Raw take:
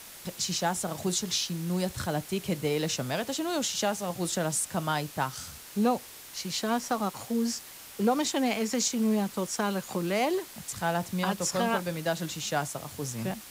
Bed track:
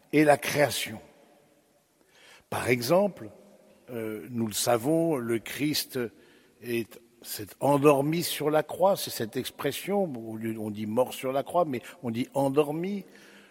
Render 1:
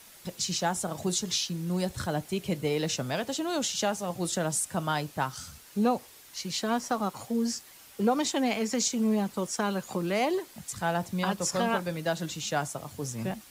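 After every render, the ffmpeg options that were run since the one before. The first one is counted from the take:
-af "afftdn=nr=7:nf=-47"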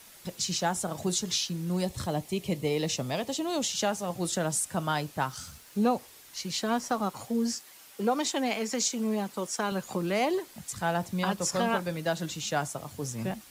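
-filter_complex "[0:a]asettb=1/sr,asplit=3[a][b][c];[a]atrim=end=1.834[d];[b]atrim=start=1.83:end=3.71,asetpts=PTS-STARTPTS,afade=t=in:d=0.004:c=qsin,afade=t=out:st=1.876:d=0.004:c=qsin,equalizer=f=1.5k:t=o:w=0.24:g=-12.5[e];[c]atrim=start=3.706[f];[d][e]acrossfade=d=0.004:c1=hsin:c2=qsin[g];[g][f]acrossfade=d=0.004:c1=qsin:c2=hsin,asettb=1/sr,asplit=3[h][i][j];[h]atrim=end=5.284[k];[i]atrim=start=5.28:end=5.83,asetpts=PTS-STARTPTS,afade=t=in:d=0.004:c=qsin,afade=t=out:st=0.546:d=0.004:c=qsin,aeval=exprs='val(0)*gte(abs(val(0)),0.00168)':c=same[l];[j]atrim=start=5.826[m];[k][l]acrossfade=d=0.004:c1=hsin:c2=qsin[n];[n][m]acrossfade=d=0.004:c1=qsin:c2=hsin,asettb=1/sr,asplit=3[o][p][q];[o]atrim=end=7.554[r];[p]atrim=start=7.55:end=9.72,asetpts=PTS-STARTPTS,afade=t=in:d=0.004:c=qsin,afade=t=out:st=2.166:d=0.004:c=qsin,highpass=f=270:p=1[s];[q]atrim=start=9.716[t];[r][s]acrossfade=d=0.004:c1=hsin:c2=qsin[u];[u][t]acrossfade=d=0.004:c1=qsin:c2=hsin"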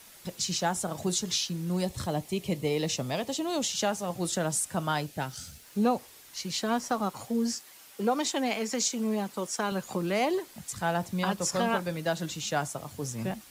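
-filter_complex "[0:a]asettb=1/sr,asplit=3[a][b][c];[a]atrim=end=5.064[d];[b]atrim=start=5.06:end=5.63,asetpts=PTS-STARTPTS,afade=t=in:d=0.004:c=qsin,afade=t=out:st=0.566:d=0.004:c=qsin,equalizer=f=1.1k:t=o:w=0.52:g=-14[e];[c]atrim=start=5.626[f];[d][e]acrossfade=d=0.004:c1=hsin:c2=qsin[g];[g][f]acrossfade=d=0.004:c1=qsin:c2=hsin"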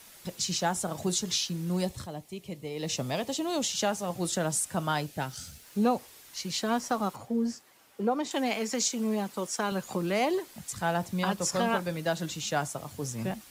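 -filter_complex "[0:a]asettb=1/sr,asplit=3[a][b][c];[a]atrim=end=7.164[d];[b]atrim=start=7.16:end=8.31,asetpts=PTS-STARTPTS,afade=t=in:d=0.004:c=qsin,afade=t=out:st=1.146:d=0.004:c=qsin,highshelf=f=2k:g=-11.5[e];[c]atrim=start=8.306[f];[d][e]acrossfade=d=0.004:c1=hsin:c2=qsin[g];[g][f]acrossfade=d=0.004:c1=qsin:c2=hsin,asplit=3[h][i][j];[h]atrim=end=2.08,asetpts=PTS-STARTPTS,afade=t=out:st=1.86:d=0.22:silence=0.354813[k];[i]atrim=start=2.08:end=2.74,asetpts=PTS-STARTPTS,volume=-9dB[l];[j]atrim=start=2.74,asetpts=PTS-STARTPTS,afade=t=in:d=0.22:silence=0.354813[m];[k][l][m]concat=n=3:v=0:a=1"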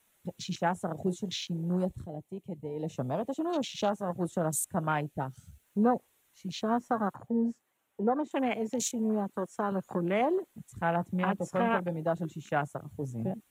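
-af "afwtdn=0.02,equalizer=f=4.9k:t=o:w=0.46:g=-13.5"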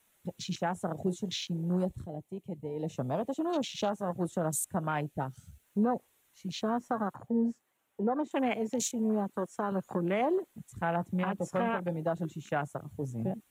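-af "alimiter=limit=-20.5dB:level=0:latency=1:release=107"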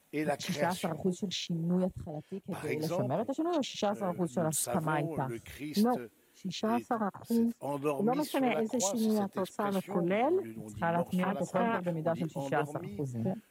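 -filter_complex "[1:a]volume=-12.5dB[a];[0:a][a]amix=inputs=2:normalize=0"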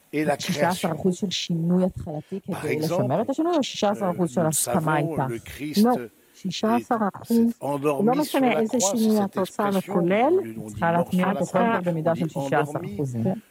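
-af "volume=9dB"

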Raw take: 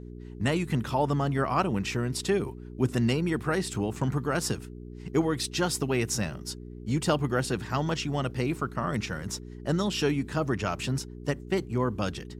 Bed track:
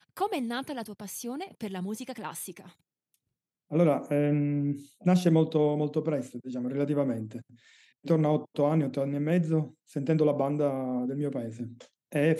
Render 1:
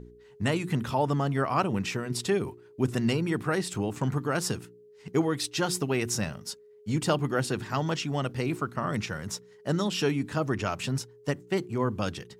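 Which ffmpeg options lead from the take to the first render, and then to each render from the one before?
-af "bandreject=f=60:t=h:w=4,bandreject=f=120:t=h:w=4,bandreject=f=180:t=h:w=4,bandreject=f=240:t=h:w=4,bandreject=f=300:t=h:w=4,bandreject=f=360:t=h:w=4"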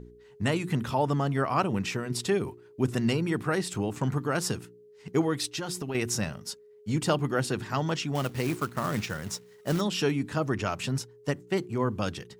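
-filter_complex "[0:a]asettb=1/sr,asplit=3[a][b][c];[a]atrim=end=5.484[d];[b]atrim=start=5.48:end=5.95,asetpts=PTS-STARTPTS,afade=t=in:d=0.004:c=qsin,afade=t=out:st=0.466:d=0.004:c=qsin,acompressor=threshold=-29dB:ratio=10:attack=3.2:release=140:knee=1:detection=peak[e];[c]atrim=start=5.946[f];[d][e]acrossfade=d=0.004:c1=hsin:c2=qsin[g];[g][f]acrossfade=d=0.004:c1=qsin:c2=hsin,asettb=1/sr,asplit=3[h][i][j];[h]atrim=end=8.154[k];[i]atrim=start=8.15:end=9.81,asetpts=PTS-STARTPTS,afade=t=in:d=0.004:c=qsin,afade=t=out:st=1.656:d=0.004:c=qsin,acrusher=bits=3:mode=log:mix=0:aa=0.000001[l];[j]atrim=start=9.806[m];[k][l]acrossfade=d=0.004:c1=hsin:c2=qsin[n];[n][m]acrossfade=d=0.004:c1=qsin:c2=hsin"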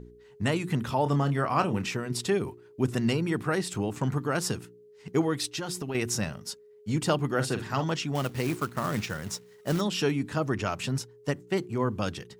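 -filter_complex "[0:a]asettb=1/sr,asplit=3[a][b][c];[a]atrim=end=1.034[d];[b]atrim=start=1.03:end=1.87,asetpts=PTS-STARTPTS,afade=t=in:d=0.004:c=qsin,afade=t=out:st=0.836:d=0.004:c=qsin,asplit=2[e][f];[f]adelay=28,volume=-9dB[g];[e][g]amix=inputs=2:normalize=0,atrim=end_sample=37044[h];[c]atrim=start=1.866[i];[d][h]acrossfade=d=0.004:c1=hsin:c2=qsin[j];[j][i]acrossfade=d=0.004:c1=qsin:c2=hsin,asettb=1/sr,asplit=3[k][l][m];[k]atrim=end=7.354[n];[l]atrim=start=7.35:end=7.84,asetpts=PTS-STARTPTS,afade=t=in:d=0.004:c=qsin,afade=t=out:st=0.486:d=0.004:c=qsin,asplit=2[o][p];[p]adelay=45,volume=-9.5dB[q];[o][q]amix=inputs=2:normalize=0,atrim=end_sample=21609[r];[m]atrim=start=7.836[s];[n][r]acrossfade=d=0.004:c1=hsin:c2=qsin[t];[t][s]acrossfade=d=0.004:c1=qsin:c2=hsin"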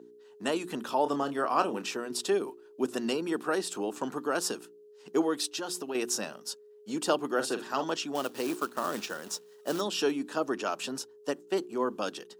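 -af "highpass=f=270:w=0.5412,highpass=f=270:w=1.3066,equalizer=f=2.1k:w=4.5:g=-12"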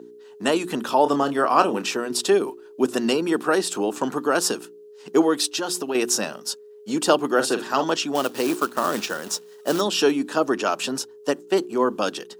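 -af "volume=9dB"

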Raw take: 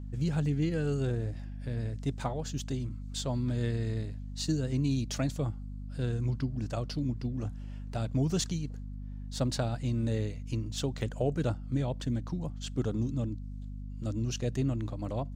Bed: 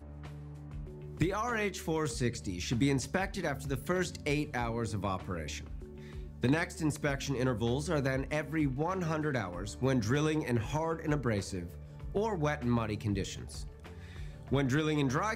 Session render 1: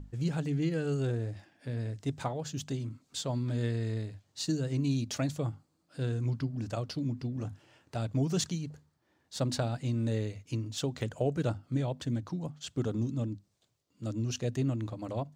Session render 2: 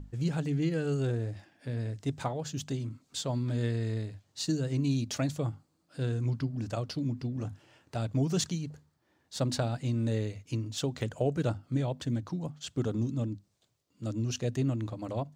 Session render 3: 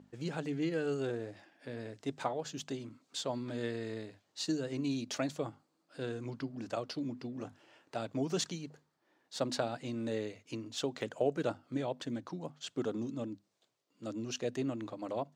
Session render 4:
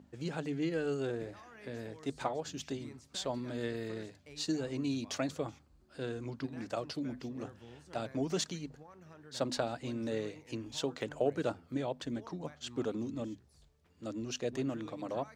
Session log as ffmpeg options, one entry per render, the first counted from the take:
-af "bandreject=f=50:t=h:w=6,bandreject=f=100:t=h:w=6,bandreject=f=150:t=h:w=6,bandreject=f=200:t=h:w=6,bandreject=f=250:t=h:w=6"
-af "volume=1dB"
-af "highpass=290,highshelf=f=6.9k:g=-9.5"
-filter_complex "[1:a]volume=-22dB[a];[0:a][a]amix=inputs=2:normalize=0"

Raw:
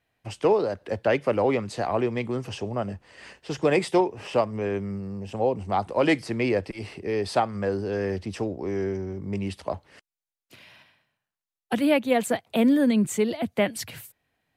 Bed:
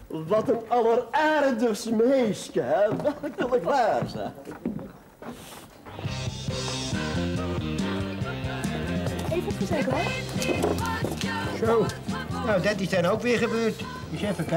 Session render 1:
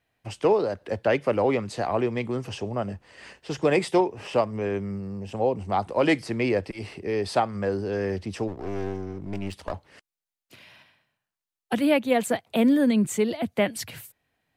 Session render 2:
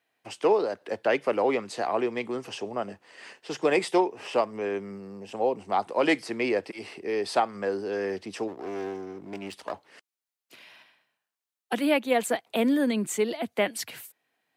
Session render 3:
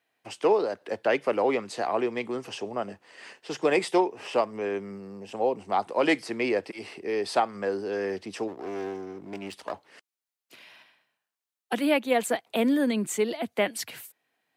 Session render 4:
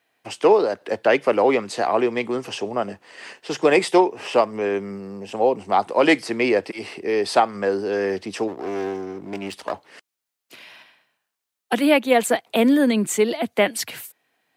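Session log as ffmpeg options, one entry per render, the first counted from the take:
-filter_complex "[0:a]asplit=3[a][b][c];[a]afade=t=out:st=8.47:d=0.02[d];[b]aeval=exprs='clip(val(0),-1,0.0106)':c=same,afade=t=in:st=8.47:d=0.02,afade=t=out:st=9.71:d=0.02[e];[c]afade=t=in:st=9.71:d=0.02[f];[d][e][f]amix=inputs=3:normalize=0"
-af "highpass=300,equalizer=f=570:t=o:w=0.27:g=-3"
-af anull
-af "volume=7dB"

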